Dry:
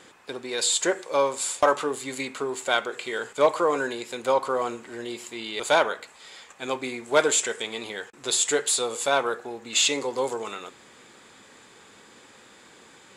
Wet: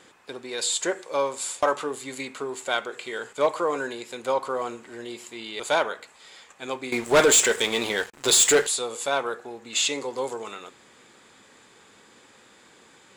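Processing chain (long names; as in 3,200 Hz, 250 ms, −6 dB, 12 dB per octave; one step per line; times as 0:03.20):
0:06.92–0:08.67: leveller curve on the samples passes 3
level −2.5 dB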